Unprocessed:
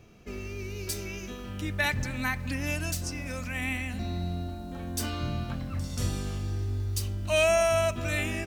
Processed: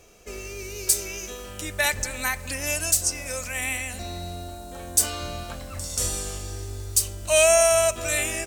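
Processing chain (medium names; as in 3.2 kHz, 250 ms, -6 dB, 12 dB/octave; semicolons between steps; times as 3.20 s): ten-band graphic EQ 125 Hz -12 dB, 250 Hz -8 dB, 500 Hz +6 dB, 8 kHz +12 dB, 16 kHz +9 dB; trim +2.5 dB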